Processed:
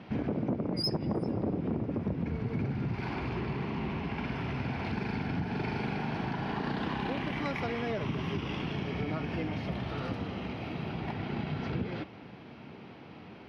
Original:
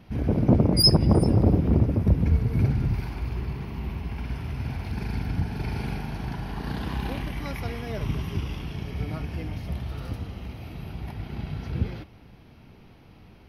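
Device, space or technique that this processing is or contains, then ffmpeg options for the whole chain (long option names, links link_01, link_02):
AM radio: -af "highpass=180,lowpass=3500,acompressor=threshold=-35dB:ratio=5,asoftclip=type=tanh:threshold=-28dB,volume=6.5dB"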